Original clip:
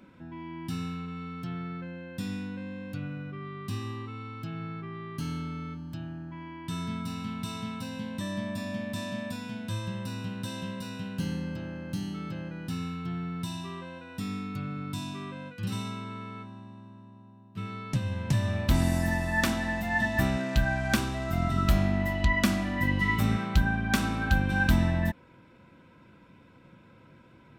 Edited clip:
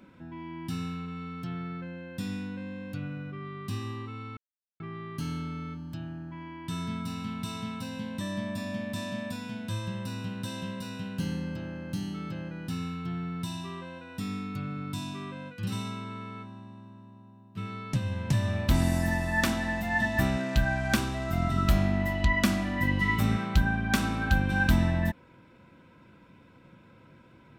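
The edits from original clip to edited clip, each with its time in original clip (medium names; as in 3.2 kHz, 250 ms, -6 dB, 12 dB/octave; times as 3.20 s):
4.37–4.80 s: mute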